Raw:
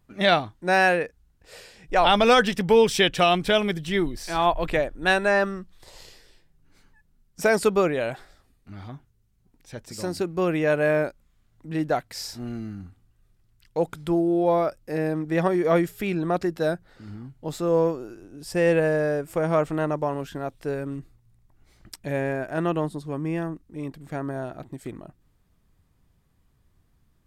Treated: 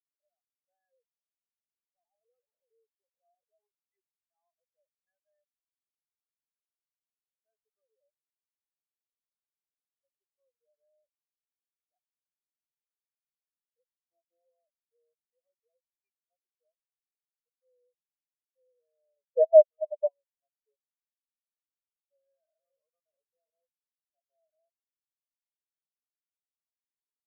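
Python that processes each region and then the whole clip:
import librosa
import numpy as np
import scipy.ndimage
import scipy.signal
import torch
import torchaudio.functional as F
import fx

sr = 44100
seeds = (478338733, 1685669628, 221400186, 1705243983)

y = fx.chain(x, sr, fx.clip_1bit(),
    fx.lowpass(hz=1200.0, slope=12), at=(2.1, 3.67))
y = fx.chain(y, sr, fx.bandpass_q(hz=810.0, q=1.1),
    fx.leveller(passes=5), at=(19.16, 20.27))
y = fx.chain(y, sr, fx.reverse_delay(ms=338, wet_db=-0.5),
    fx.echo_single(ms=84, db=-15.0),
    fx.env_flatten(amount_pct=50), at=(22.15, 24.7))
y = scipy.signal.sosfilt(scipy.signal.ellip(3, 1.0, 40, [480.0, 2900.0], 'bandpass', fs=sr, output='sos'), y)
y = fx.level_steps(y, sr, step_db=17)
y = fx.spectral_expand(y, sr, expansion=4.0)
y = F.gain(torch.from_numpy(y), 3.0).numpy()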